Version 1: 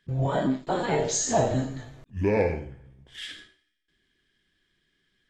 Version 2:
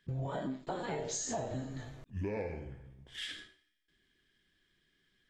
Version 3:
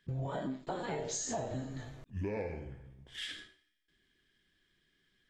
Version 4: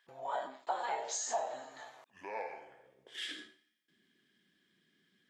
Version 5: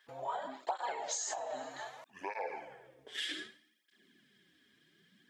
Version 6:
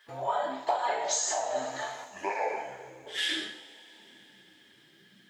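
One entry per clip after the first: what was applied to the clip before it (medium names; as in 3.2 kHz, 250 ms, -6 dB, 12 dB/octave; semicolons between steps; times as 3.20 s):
compression 5:1, threshold -33 dBFS, peak gain reduction 13.5 dB; trim -2.5 dB
no audible change
high-pass sweep 820 Hz -> 200 Hz, 2.64–3.63 s
compression 6:1, threshold -40 dBFS, peak gain reduction 10.5 dB; hard clipper -33 dBFS, distortion -33 dB; cancelling through-zero flanger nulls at 0.64 Hz, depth 6.1 ms; trim +8.5 dB
two-slope reverb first 0.44 s, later 4.4 s, from -22 dB, DRR 0 dB; trim +5.5 dB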